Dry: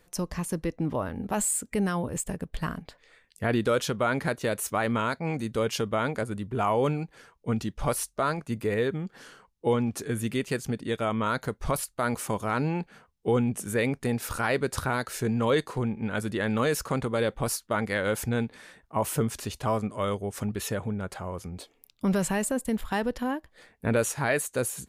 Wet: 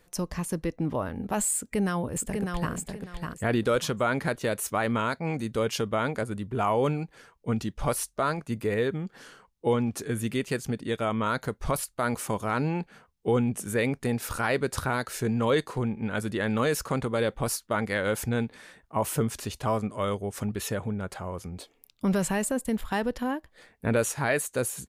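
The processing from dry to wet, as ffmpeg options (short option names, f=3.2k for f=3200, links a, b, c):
-filter_complex "[0:a]asplit=2[a][b];[b]afade=t=in:st=1.56:d=0.01,afade=t=out:st=2.74:d=0.01,aecho=0:1:600|1200|1800:0.595662|0.148916|0.0372289[c];[a][c]amix=inputs=2:normalize=0"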